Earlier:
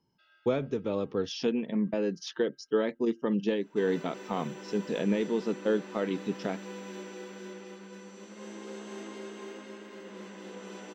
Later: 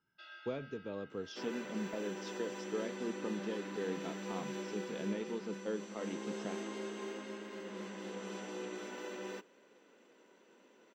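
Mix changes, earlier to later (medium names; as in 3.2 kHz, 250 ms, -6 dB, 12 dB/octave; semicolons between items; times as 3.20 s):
speech -11.5 dB; first sound +12.0 dB; second sound: entry -2.40 s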